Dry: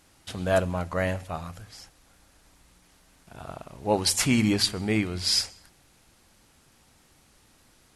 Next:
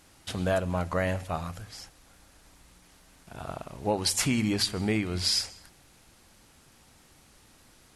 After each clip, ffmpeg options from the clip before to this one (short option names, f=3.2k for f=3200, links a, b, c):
-af "acompressor=threshold=-25dB:ratio=6,volume=2dB"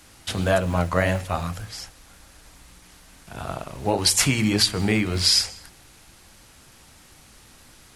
-filter_complex "[0:a]acrossover=split=130|920[a][b][c];[a]acrusher=bits=4:mode=log:mix=0:aa=0.000001[d];[b]flanger=delay=16:depth=7.8:speed=1.7[e];[d][e][c]amix=inputs=3:normalize=0,volume=8dB"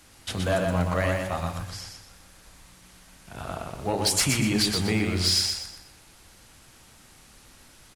-filter_complex "[0:a]asoftclip=type=tanh:threshold=-11.5dB,asplit=2[a][b];[b]aecho=0:1:122|244|366|488:0.596|0.203|0.0689|0.0234[c];[a][c]amix=inputs=2:normalize=0,volume=-3.5dB"